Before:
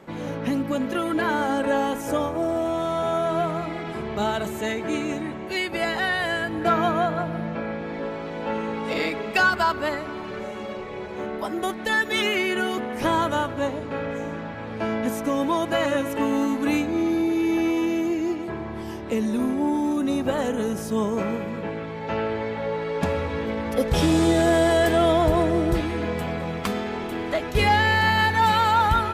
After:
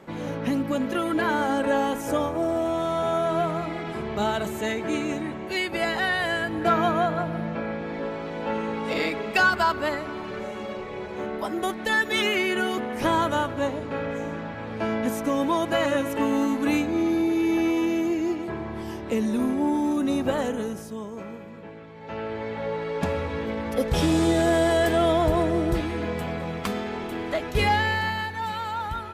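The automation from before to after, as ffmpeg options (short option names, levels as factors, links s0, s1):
-af "volume=2.82,afade=t=out:st=20.33:d=0.65:silence=0.281838,afade=t=in:st=21.94:d=0.68:silence=0.334965,afade=t=out:st=27.64:d=0.65:silence=0.354813"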